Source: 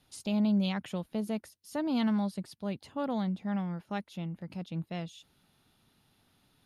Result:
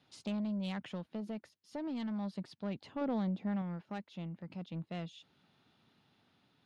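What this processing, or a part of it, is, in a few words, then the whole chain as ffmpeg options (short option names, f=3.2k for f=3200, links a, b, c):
AM radio: -filter_complex "[0:a]highpass=120,lowpass=4.3k,acompressor=threshold=-31dB:ratio=6,asoftclip=type=tanh:threshold=-30.5dB,tremolo=f=0.35:d=0.31,asettb=1/sr,asplit=3[a][b][c];[a]atrim=end=3.014[d];[b]atrim=start=3.01:end=3.62,asetpts=PTS-STARTPTS,afade=t=in:d=0.004:c=qsin,afade=t=out:st=0.606:d=0.004:c=qsin,equalizer=f=340:t=o:w=1.7:g=5.5[e];[c]atrim=start=3.616[f];[d][e]acrossfade=d=0.004:c1=hsin:c2=qsin[g];[g][f]acrossfade=d=0.004:c1=qsin:c2=hsin"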